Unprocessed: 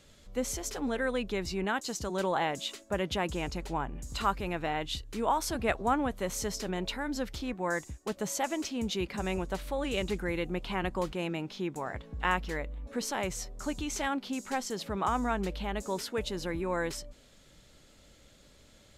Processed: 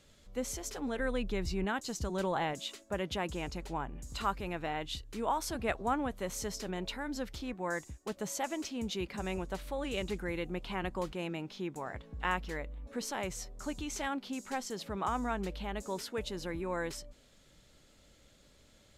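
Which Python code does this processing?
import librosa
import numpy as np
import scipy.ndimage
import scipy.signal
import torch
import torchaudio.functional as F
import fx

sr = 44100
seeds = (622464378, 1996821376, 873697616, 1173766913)

y = fx.low_shelf(x, sr, hz=130.0, db=11.5, at=(0.99, 2.54))
y = F.gain(torch.from_numpy(y), -4.0).numpy()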